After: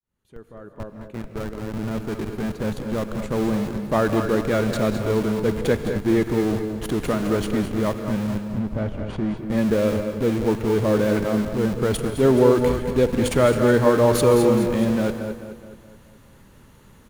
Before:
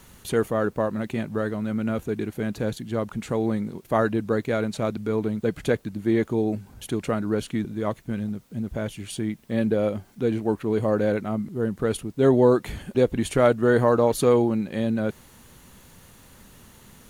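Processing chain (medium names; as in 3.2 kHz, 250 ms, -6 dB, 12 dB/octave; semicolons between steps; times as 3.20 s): fade-in on the opening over 4.16 s; band-stop 730 Hz, Q 13; in parallel at -6 dB: Schmitt trigger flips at -32.5 dBFS; 8.49–9.37 s: on the sum: tape spacing loss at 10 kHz 25 dB; on a send: feedback delay 212 ms, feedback 51%, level -10 dB; on the sum: gated-style reverb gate 260 ms rising, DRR 8 dB; tape noise reduction on one side only decoder only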